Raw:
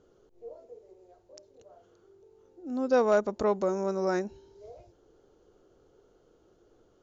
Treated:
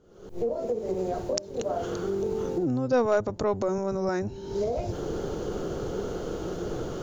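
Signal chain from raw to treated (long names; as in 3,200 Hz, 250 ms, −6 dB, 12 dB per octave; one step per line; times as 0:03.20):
sub-octave generator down 1 octave, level −3 dB
camcorder AGC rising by 69 dB per second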